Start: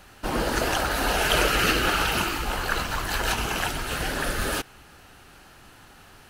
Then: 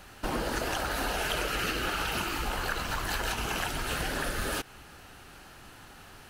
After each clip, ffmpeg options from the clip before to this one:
-af "acompressor=threshold=-28dB:ratio=6"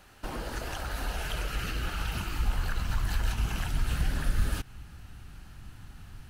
-af "asubboost=boost=8.5:cutoff=160,volume=-6dB"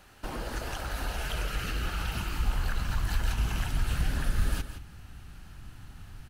-af "aecho=1:1:169:0.282"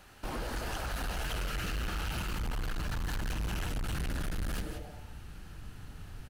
-filter_complex "[0:a]asplit=7[a][b][c][d][e][f][g];[b]adelay=91,afreqshift=140,volume=-19dB[h];[c]adelay=182,afreqshift=280,volume=-22.9dB[i];[d]adelay=273,afreqshift=420,volume=-26.8dB[j];[e]adelay=364,afreqshift=560,volume=-30.6dB[k];[f]adelay=455,afreqshift=700,volume=-34.5dB[l];[g]adelay=546,afreqshift=840,volume=-38.4dB[m];[a][h][i][j][k][l][m]amix=inputs=7:normalize=0,volume=31dB,asoftclip=hard,volume=-31dB"

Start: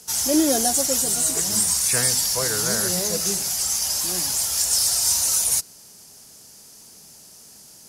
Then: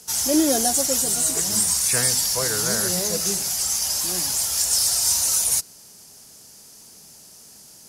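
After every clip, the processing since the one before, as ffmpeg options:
-af anull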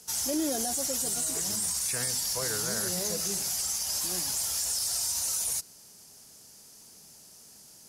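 -af "alimiter=limit=-14.5dB:level=0:latency=1:release=37,volume=-6dB"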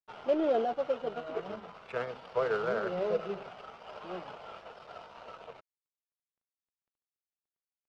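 -af "highpass=230,equalizer=f=280:t=q:w=4:g=-9,equalizer=f=450:t=q:w=4:g=8,equalizer=f=630:t=q:w=4:g=6,equalizer=f=1.3k:t=q:w=4:g=9,equalizer=f=1.8k:t=q:w=4:g=-8,equalizer=f=2.9k:t=q:w=4:g=5,lowpass=f=3.2k:w=0.5412,lowpass=f=3.2k:w=1.3066,aeval=exprs='sgn(val(0))*max(abs(val(0))-0.00266,0)':c=same,adynamicsmooth=sensitivity=2.5:basefreq=1.7k,volume=3.5dB"

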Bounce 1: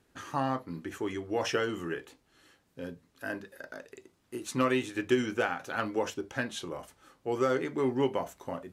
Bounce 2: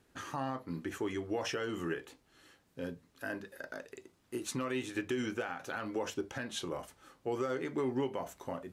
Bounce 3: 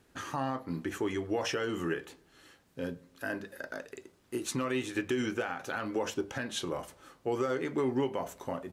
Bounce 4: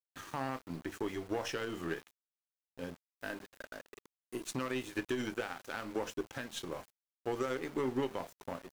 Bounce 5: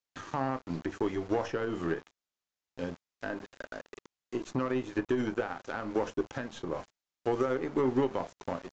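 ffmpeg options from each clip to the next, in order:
-af "alimiter=level_in=1.5dB:limit=-24dB:level=0:latency=1:release=170,volume=-1.5dB"
-filter_complex "[0:a]asplit=2[a][b];[b]adelay=102,lowpass=f=2k:p=1,volume=-23dB,asplit=2[c][d];[d]adelay=102,lowpass=f=2k:p=1,volume=0.53,asplit=2[e][f];[f]adelay=102,lowpass=f=2k:p=1,volume=0.53,asplit=2[g][h];[h]adelay=102,lowpass=f=2k:p=1,volume=0.53[i];[a][c][e][g][i]amix=inputs=5:normalize=0,volume=3.5dB"
-af "aeval=exprs='val(0)*gte(abs(val(0)),0.00891)':c=same,aeval=exprs='0.0891*(cos(1*acos(clip(val(0)/0.0891,-1,1)))-cos(1*PI/2))+0.0141*(cos(3*acos(clip(val(0)/0.0891,-1,1)))-cos(3*PI/2))+0.00224*(cos(6*acos(clip(val(0)/0.0891,-1,1)))-cos(6*PI/2))':c=same,volume=-2dB"
-filter_complex "[0:a]acrossover=split=1500[a][b];[b]acompressor=threshold=-55dB:ratio=6[c];[a][c]amix=inputs=2:normalize=0,aresample=16000,aresample=44100,volume=6.5dB"

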